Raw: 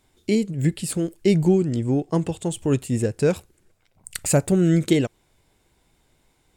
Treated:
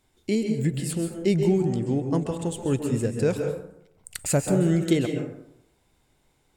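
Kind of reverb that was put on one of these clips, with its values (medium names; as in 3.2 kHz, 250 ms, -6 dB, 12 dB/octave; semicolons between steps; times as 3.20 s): plate-style reverb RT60 0.75 s, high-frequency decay 0.45×, pre-delay 120 ms, DRR 4 dB; trim -4 dB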